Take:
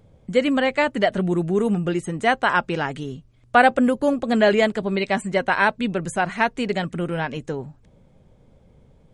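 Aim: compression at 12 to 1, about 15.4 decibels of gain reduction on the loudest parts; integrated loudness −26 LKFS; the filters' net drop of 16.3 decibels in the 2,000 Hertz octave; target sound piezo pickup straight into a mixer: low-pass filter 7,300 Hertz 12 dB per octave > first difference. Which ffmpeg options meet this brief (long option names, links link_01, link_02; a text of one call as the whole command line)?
ffmpeg -i in.wav -af "equalizer=frequency=2000:width_type=o:gain=-5.5,acompressor=threshold=-28dB:ratio=12,lowpass=7300,aderivative,volume=25dB" out.wav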